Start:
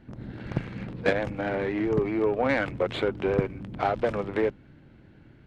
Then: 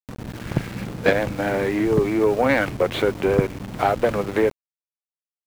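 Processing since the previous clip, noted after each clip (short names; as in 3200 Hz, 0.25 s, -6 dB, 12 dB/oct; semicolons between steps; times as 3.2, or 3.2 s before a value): sample gate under -39 dBFS; upward compressor, threshold -47 dBFS; gain +6 dB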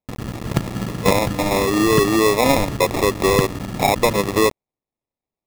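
in parallel at +1.5 dB: limiter -14 dBFS, peak gain reduction 11 dB; on the sum: sample-and-hold 29×; gain -2 dB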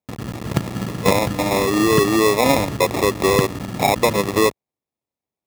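HPF 65 Hz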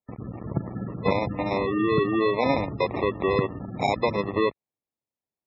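spectral gate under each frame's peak -20 dB strong; gain -6.5 dB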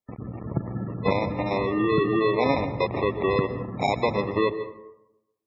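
reverb RT60 0.90 s, pre-delay 0.118 s, DRR 11.5 dB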